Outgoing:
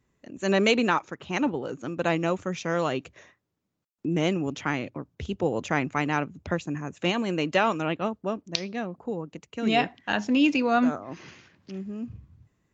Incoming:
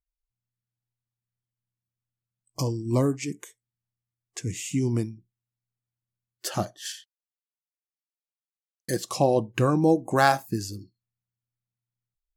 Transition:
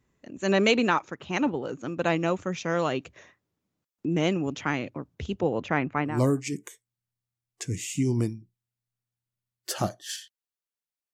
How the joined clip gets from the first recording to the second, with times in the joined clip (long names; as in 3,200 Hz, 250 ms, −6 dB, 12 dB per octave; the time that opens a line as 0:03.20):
outgoing
0:05.41–0:06.23: low-pass filter 5,200 Hz → 1,400 Hz
0:06.13: continue with incoming from 0:02.89, crossfade 0.20 s